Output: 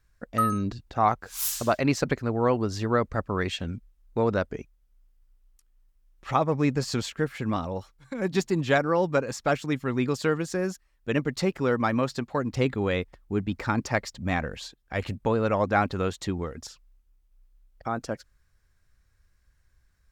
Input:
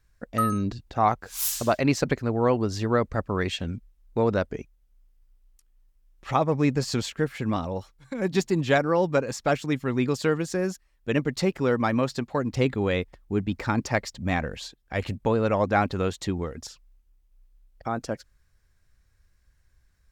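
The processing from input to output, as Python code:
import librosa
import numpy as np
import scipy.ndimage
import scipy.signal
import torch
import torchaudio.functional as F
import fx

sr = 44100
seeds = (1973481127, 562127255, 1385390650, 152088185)

y = fx.peak_eq(x, sr, hz=1300.0, db=2.5, octaves=0.77)
y = y * librosa.db_to_amplitude(-1.5)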